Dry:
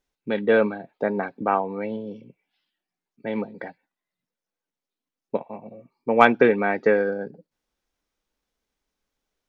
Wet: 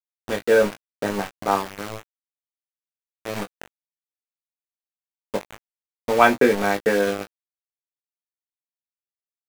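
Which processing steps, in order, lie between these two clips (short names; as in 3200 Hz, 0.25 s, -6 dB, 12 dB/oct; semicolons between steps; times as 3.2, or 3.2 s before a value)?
sample gate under -24 dBFS; early reflections 20 ms -4.5 dB, 36 ms -16 dB; gain -1 dB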